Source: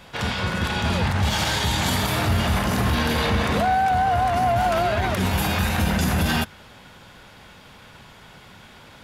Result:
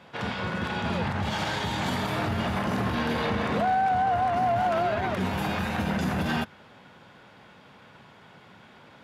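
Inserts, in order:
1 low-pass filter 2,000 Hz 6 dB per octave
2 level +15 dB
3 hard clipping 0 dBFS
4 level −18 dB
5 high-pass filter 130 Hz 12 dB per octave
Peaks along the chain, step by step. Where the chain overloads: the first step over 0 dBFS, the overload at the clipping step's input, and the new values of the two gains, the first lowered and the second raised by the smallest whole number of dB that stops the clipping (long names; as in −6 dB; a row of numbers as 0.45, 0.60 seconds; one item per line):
−11.0, +4.0, 0.0, −18.0, −15.0 dBFS
step 2, 4.0 dB
step 2 +11 dB, step 4 −14 dB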